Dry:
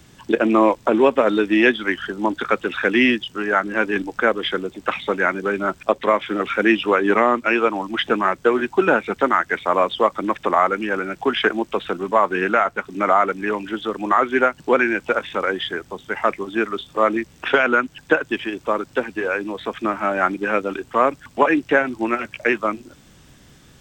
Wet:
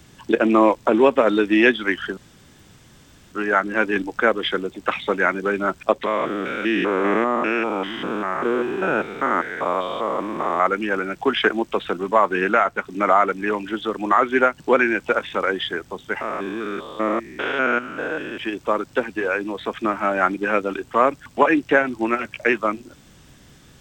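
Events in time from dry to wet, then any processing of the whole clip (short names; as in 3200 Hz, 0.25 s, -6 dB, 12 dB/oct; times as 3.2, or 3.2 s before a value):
2.17–3.32 room tone
6.06–10.66 stepped spectrum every 0.2 s
16.21–18.38 stepped spectrum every 0.2 s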